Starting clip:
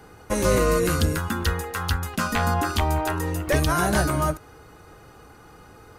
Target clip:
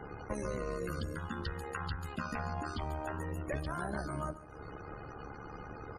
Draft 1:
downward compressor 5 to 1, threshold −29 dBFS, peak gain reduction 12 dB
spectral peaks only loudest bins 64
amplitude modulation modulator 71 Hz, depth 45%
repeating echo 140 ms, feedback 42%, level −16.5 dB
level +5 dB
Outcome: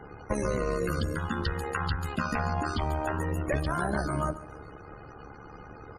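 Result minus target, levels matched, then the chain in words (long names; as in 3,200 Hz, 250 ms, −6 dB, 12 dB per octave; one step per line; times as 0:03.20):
downward compressor: peak gain reduction −8.5 dB
downward compressor 5 to 1, threshold −39.5 dBFS, peak gain reduction 20.5 dB
spectral peaks only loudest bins 64
amplitude modulation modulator 71 Hz, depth 45%
repeating echo 140 ms, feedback 42%, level −16.5 dB
level +5 dB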